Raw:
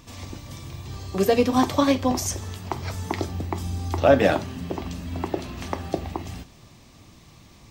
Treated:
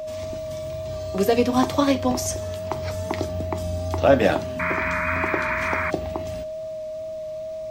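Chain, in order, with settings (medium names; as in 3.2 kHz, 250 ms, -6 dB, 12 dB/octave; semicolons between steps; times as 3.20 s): whistle 630 Hz -29 dBFS; painted sound noise, 4.59–5.91 s, 890–2500 Hz -26 dBFS; wow and flutter 16 cents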